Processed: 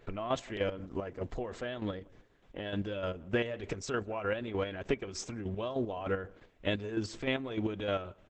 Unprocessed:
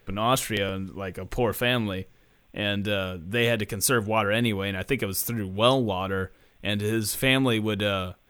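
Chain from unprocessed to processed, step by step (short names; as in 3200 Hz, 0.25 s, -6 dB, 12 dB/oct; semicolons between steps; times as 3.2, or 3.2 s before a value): LPF 3500 Hz 6 dB/oct; bell 530 Hz +5.5 dB 1.2 oct; 0.75–2.94 notch 2500 Hz, Q 8.5; comb 3 ms, depth 31%; compressor 6:1, threshold -26 dBFS, peak gain reduction 14 dB; chopper 3.3 Hz, depth 60%, duty 30%; darkening echo 0.168 s, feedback 17%, low-pass 920 Hz, level -21.5 dB; Opus 10 kbps 48000 Hz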